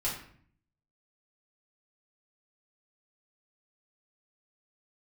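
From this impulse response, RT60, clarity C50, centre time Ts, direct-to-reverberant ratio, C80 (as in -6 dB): 0.55 s, 5.5 dB, 34 ms, -7.5 dB, 9.0 dB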